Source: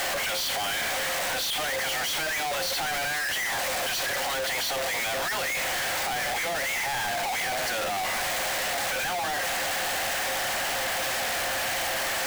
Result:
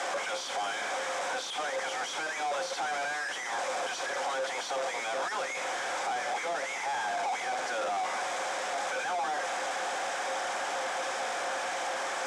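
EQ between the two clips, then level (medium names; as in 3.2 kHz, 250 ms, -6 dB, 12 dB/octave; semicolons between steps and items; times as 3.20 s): cabinet simulation 360–8500 Hz, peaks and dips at 1.9 kHz -8 dB, 2.8 kHz -9 dB, 4.3 kHz -10 dB; treble shelf 6.3 kHz -11 dB; band-stop 640 Hz, Q 12; 0.0 dB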